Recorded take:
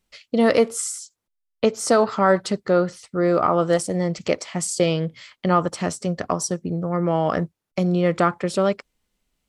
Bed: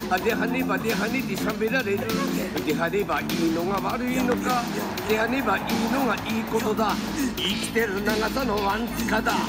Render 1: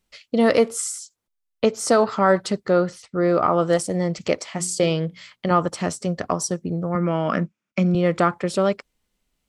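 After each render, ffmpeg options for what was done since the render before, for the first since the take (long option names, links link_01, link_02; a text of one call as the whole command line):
ffmpeg -i in.wav -filter_complex "[0:a]asettb=1/sr,asplit=3[link_01][link_02][link_03];[link_01]atrim=end=3.024[link_04];[link_02]atrim=start=3.02:end=3.48,asetpts=PTS-STARTPTS,afade=type=in:duration=0.004:curve=qsin,afade=type=out:start_time=0.456:duration=0.004:curve=qsin,lowpass=6300[link_05];[link_03]atrim=start=3.476[link_06];[link_04][link_05]acrossfade=duration=0.004:curve1=hsin:curve2=qsin[link_07];[link_07][link_06]acrossfade=duration=0.004:curve1=qsin:curve2=hsin,asettb=1/sr,asplit=3[link_08][link_09][link_10];[link_08]atrim=end=4.524[link_11];[link_09]atrim=start=4.52:end=5.51,asetpts=PTS-STARTPTS,afade=type=in:duration=0.004:curve=qsin,afade=type=out:start_time=0.986:duration=0.004:curve=qsin,bandreject=frequency=60:width_type=h:width=6,bandreject=frequency=120:width_type=h:width=6,bandreject=frequency=180:width_type=h:width=6,bandreject=frequency=240:width_type=h:width=6,bandreject=frequency=300:width_type=h:width=6,bandreject=frequency=360:width_type=h:width=6,bandreject=frequency=420:width_type=h:width=6[link_12];[link_10]atrim=start=5.506[link_13];[link_11][link_12]acrossfade=duration=0.004:curve1=hsin:curve2=qsin[link_14];[link_14][link_13]acrossfade=duration=0.004:curve1=qsin:curve2=hsin,asettb=1/sr,asplit=3[link_15][link_16][link_17];[link_15]atrim=end=6.954[link_18];[link_16]atrim=start=6.95:end=7.95,asetpts=PTS-STARTPTS,afade=type=in:duration=0.004:curve=qsin,afade=type=out:start_time=0.996:duration=0.004:curve=qsin,highpass=150,equalizer=frequency=210:width_type=q:width=4:gain=10,equalizer=frequency=430:width_type=q:width=4:gain=-6,equalizer=frequency=790:width_type=q:width=4:gain=-7,equalizer=frequency=1400:width_type=q:width=4:gain=5,equalizer=frequency=2400:width_type=q:width=4:gain=8,equalizer=frequency=4200:width_type=q:width=4:gain=-7,lowpass=frequency=7300:width=0.5412,lowpass=frequency=7300:width=1.3066[link_19];[link_17]atrim=start=7.946[link_20];[link_18][link_19]acrossfade=duration=0.004:curve1=hsin:curve2=qsin[link_21];[link_21][link_20]acrossfade=duration=0.004:curve1=qsin:curve2=hsin" out.wav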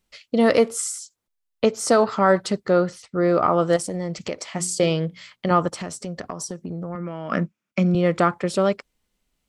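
ffmpeg -i in.wav -filter_complex "[0:a]asettb=1/sr,asplit=3[link_01][link_02][link_03];[link_01]atrim=end=3.764[link_04];[link_02]atrim=start=3.76:end=4.46,asetpts=PTS-STARTPTS,afade=type=in:duration=0.004:curve=qsin,afade=type=out:start_time=0.696:duration=0.004:curve=qsin,acompressor=threshold=-24dB:ratio=4:attack=3.2:release=140:knee=1:detection=peak[link_05];[link_03]atrim=start=4.456[link_06];[link_04][link_05]acrossfade=duration=0.004:curve1=hsin:curve2=qsin[link_07];[link_07][link_06]acrossfade=duration=0.004:curve1=qsin:curve2=hsin,asplit=3[link_08][link_09][link_10];[link_08]afade=type=out:start_time=5.69:duration=0.02[link_11];[link_09]acompressor=threshold=-27dB:ratio=6:attack=3.2:release=140:knee=1:detection=peak,afade=type=in:start_time=5.69:duration=0.02,afade=type=out:start_time=7.3:duration=0.02[link_12];[link_10]afade=type=in:start_time=7.3:duration=0.02[link_13];[link_11][link_12][link_13]amix=inputs=3:normalize=0" out.wav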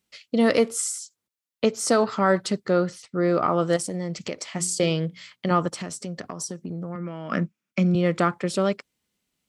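ffmpeg -i in.wav -af "highpass=110,equalizer=frequency=750:width_type=o:width=2:gain=-4.5" out.wav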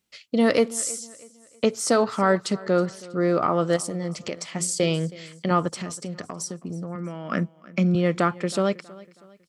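ffmpeg -i in.wav -af "aecho=1:1:321|642|963:0.0891|0.0357|0.0143" out.wav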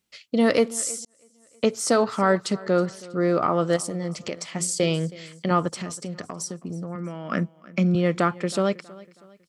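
ffmpeg -i in.wav -filter_complex "[0:a]asplit=2[link_01][link_02];[link_01]atrim=end=1.05,asetpts=PTS-STARTPTS,afade=type=out:start_time=1.046:duration=0.004:curve=hsin[link_03];[link_02]atrim=start=1.05,asetpts=PTS-STARTPTS,afade=type=in:duration=0.61[link_04];[link_03][link_04]concat=n=2:v=0:a=1" out.wav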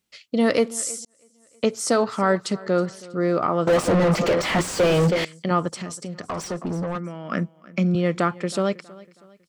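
ffmpeg -i in.wav -filter_complex "[0:a]asettb=1/sr,asplit=3[link_01][link_02][link_03];[link_01]atrim=end=3.674[link_04];[link_02]atrim=start=3.67:end=5.25,asetpts=PTS-STARTPTS,afade=type=in:duration=0.004:curve=qsin,afade=type=out:start_time=1.576:duration=0.004:curve=qsin,asplit=2[link_05][link_06];[link_06]highpass=frequency=720:poles=1,volume=40dB,asoftclip=type=tanh:threshold=-9.5dB[link_07];[link_05][link_07]amix=inputs=2:normalize=0,lowpass=frequency=1000:poles=1,volume=-6dB[link_08];[link_03]atrim=start=5.246[link_09];[link_04][link_08]acrossfade=duration=0.004:curve1=hsin:curve2=qsin[link_10];[link_10][link_09]acrossfade=duration=0.004:curve1=qsin:curve2=hsin,asplit=3[link_11][link_12][link_13];[link_11]afade=type=out:start_time=6.28:duration=0.02[link_14];[link_12]asplit=2[link_15][link_16];[link_16]highpass=frequency=720:poles=1,volume=27dB,asoftclip=type=tanh:threshold=-17.5dB[link_17];[link_15][link_17]amix=inputs=2:normalize=0,lowpass=frequency=1500:poles=1,volume=-6dB,afade=type=in:start_time=6.28:duration=0.02,afade=type=out:start_time=6.97:duration=0.02[link_18];[link_13]afade=type=in:start_time=6.97:duration=0.02[link_19];[link_14][link_18][link_19]amix=inputs=3:normalize=0" out.wav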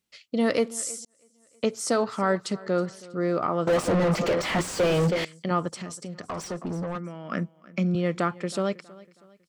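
ffmpeg -i in.wav -af "volume=-4dB" out.wav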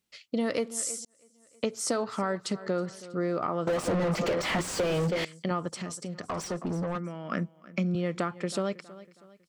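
ffmpeg -i in.wav -af "acompressor=threshold=-25dB:ratio=6" out.wav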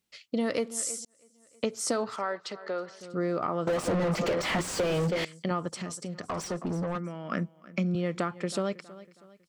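ffmpeg -i in.wav -filter_complex "[0:a]asettb=1/sr,asplit=3[link_01][link_02][link_03];[link_01]atrim=end=2.164[link_04];[link_02]atrim=start=2.16:end=3.01,asetpts=PTS-STARTPTS,afade=type=in:duration=0.004:curve=qsin,afade=type=out:start_time=0.846:duration=0.004:curve=qsin,acrossover=split=400 5800:gain=0.126 1 0.0708[link_05][link_06][link_07];[link_05][link_06][link_07]amix=inputs=3:normalize=0[link_08];[link_03]atrim=start=3.006[link_09];[link_04][link_08]acrossfade=duration=0.004:curve1=hsin:curve2=qsin[link_10];[link_10][link_09]acrossfade=duration=0.004:curve1=qsin:curve2=hsin" out.wav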